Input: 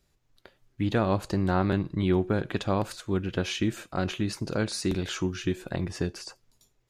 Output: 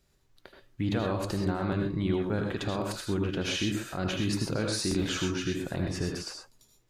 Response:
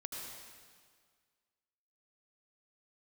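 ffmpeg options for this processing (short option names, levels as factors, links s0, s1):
-filter_complex "[0:a]alimiter=limit=0.075:level=0:latency=1:release=60[s0];[1:a]atrim=start_sample=2205,atrim=end_sample=6174[s1];[s0][s1]afir=irnorm=-1:irlink=0,volume=1.88"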